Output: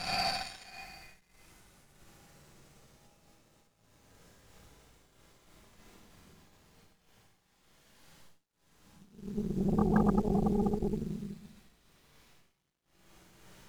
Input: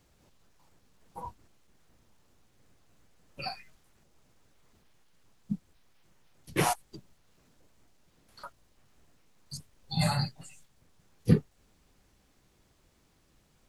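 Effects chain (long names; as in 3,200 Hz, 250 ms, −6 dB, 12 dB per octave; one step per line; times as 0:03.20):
extreme stretch with random phases 5.2×, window 0.50 s, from 0:03.57
four-comb reverb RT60 1.1 s, DRR −3.5 dB
harmonic generator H 2 −14 dB, 3 −34 dB, 6 −25 dB, 8 −10 dB, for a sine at −18.5 dBFS
level +1.5 dB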